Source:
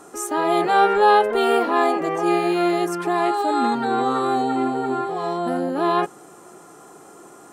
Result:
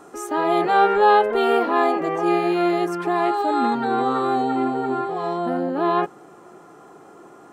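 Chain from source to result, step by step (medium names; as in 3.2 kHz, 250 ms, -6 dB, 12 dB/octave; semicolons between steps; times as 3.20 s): peaking EQ 9.7 kHz -9 dB 1.6 oct, from 5.46 s -15 dB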